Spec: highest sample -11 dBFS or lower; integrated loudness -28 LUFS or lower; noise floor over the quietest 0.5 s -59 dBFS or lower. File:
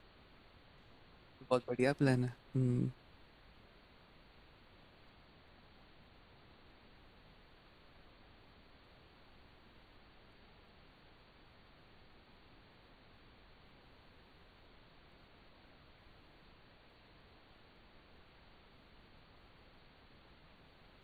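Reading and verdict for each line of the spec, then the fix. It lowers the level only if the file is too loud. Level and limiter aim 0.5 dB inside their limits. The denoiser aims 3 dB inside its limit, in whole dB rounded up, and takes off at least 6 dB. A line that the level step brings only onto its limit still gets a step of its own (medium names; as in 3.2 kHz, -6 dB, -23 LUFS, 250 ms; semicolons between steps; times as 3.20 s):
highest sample -18.5 dBFS: pass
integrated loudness -35.5 LUFS: pass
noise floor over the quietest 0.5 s -63 dBFS: pass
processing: none needed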